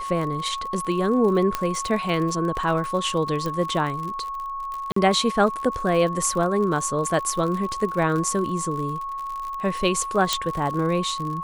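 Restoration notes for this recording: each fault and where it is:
crackle 62/s -29 dBFS
tone 1100 Hz -28 dBFS
1.55 pop -8 dBFS
3.46 pop -15 dBFS
4.92–4.96 gap 44 ms
10.33 pop -5 dBFS

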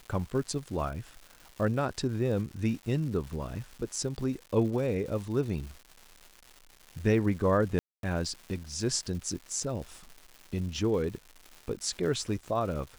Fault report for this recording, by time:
crackle 350/s -40 dBFS
7.79–8.03 gap 0.242 s

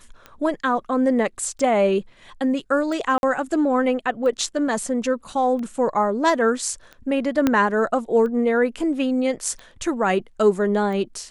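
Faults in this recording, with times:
tick 45 rpm -23 dBFS
3.18–3.23 gap 51 ms
7.47 pop -6 dBFS

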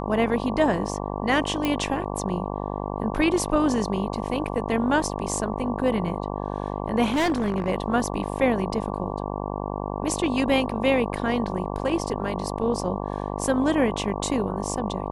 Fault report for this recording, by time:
buzz 50 Hz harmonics 23 -30 dBFS
1.65 pop -11 dBFS
7.06–7.69 clipped -19 dBFS

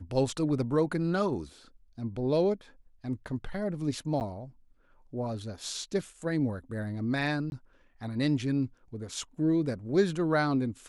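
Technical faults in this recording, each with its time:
4.2–4.21 gap 9.3 ms
7.5–7.52 gap 21 ms

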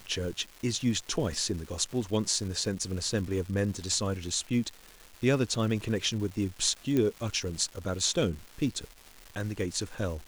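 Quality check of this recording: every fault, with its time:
crackle 510/s -39 dBFS
6.97 pop -16 dBFS

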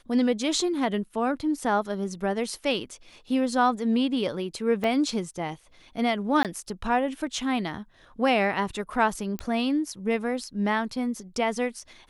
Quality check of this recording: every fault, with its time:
4.84 gap 2.3 ms
6.43–6.45 gap 17 ms
9.39 pop -17 dBFS

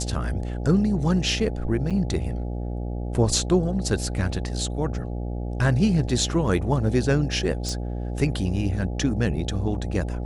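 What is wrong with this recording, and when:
buzz 60 Hz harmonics 14 -29 dBFS
1.9–1.91 gap 6.8 ms
7.69 pop

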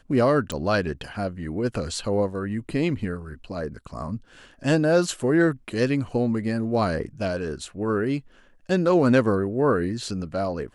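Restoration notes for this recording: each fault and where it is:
0.52 pop

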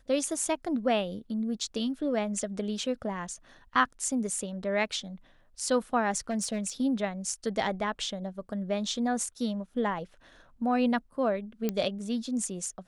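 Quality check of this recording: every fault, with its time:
6.29–6.7 clipped -24.5 dBFS
11.69 pop -15 dBFS

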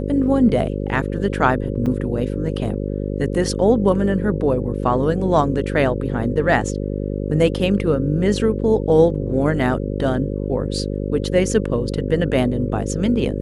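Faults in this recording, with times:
buzz 50 Hz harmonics 11 -24 dBFS
1.86–1.87 gap 5.3 ms

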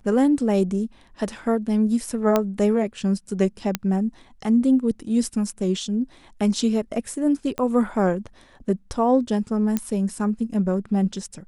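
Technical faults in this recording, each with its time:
2.36 pop -6 dBFS
3.75 pop -7 dBFS
7.58 pop -14 dBFS
9.77 pop -10 dBFS

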